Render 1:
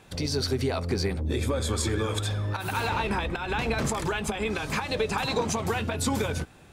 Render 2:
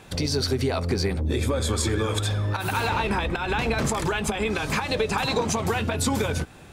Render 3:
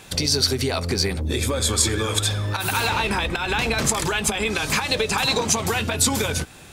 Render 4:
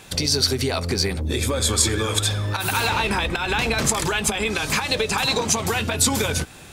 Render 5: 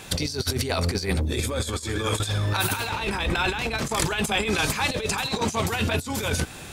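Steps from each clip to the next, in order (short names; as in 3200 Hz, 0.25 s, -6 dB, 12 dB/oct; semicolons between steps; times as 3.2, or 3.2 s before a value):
compressor 1.5:1, threshold -32 dBFS, peak gain reduction 4 dB; gain +6 dB
high shelf 2400 Hz +10.5 dB
vocal rider within 3 dB 2 s
negative-ratio compressor -25 dBFS, ratio -0.5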